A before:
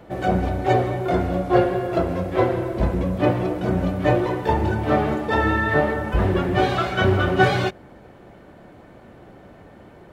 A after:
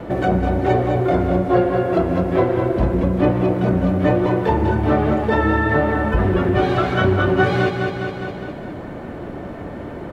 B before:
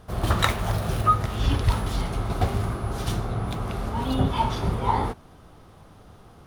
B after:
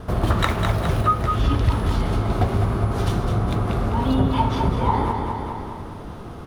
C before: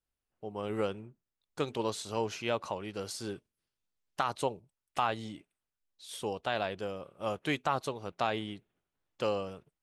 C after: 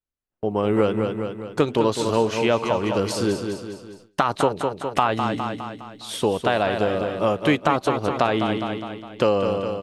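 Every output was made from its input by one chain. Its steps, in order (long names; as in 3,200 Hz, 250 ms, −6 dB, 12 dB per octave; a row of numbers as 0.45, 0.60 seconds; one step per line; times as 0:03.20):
repeating echo 205 ms, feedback 48%, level −8 dB
downward compressor 2 to 1, threshold −37 dBFS
high-shelf EQ 3,200 Hz −8 dB
noise gate with hold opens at −52 dBFS
parametric band 280 Hz +2.5 dB 0.77 octaves
notch filter 780 Hz, Q 23
normalise the peak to −3 dBFS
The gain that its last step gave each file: +13.0, +12.5, +17.5 decibels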